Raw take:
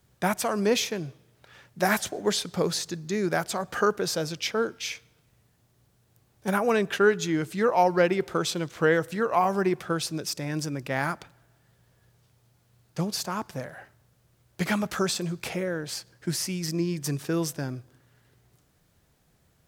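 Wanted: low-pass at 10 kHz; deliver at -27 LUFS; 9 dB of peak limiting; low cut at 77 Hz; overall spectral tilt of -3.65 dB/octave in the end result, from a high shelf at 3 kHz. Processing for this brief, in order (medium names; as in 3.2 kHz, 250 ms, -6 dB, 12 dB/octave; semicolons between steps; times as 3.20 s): high-pass 77 Hz; low-pass 10 kHz; treble shelf 3 kHz +4 dB; trim +1.5 dB; peak limiter -15 dBFS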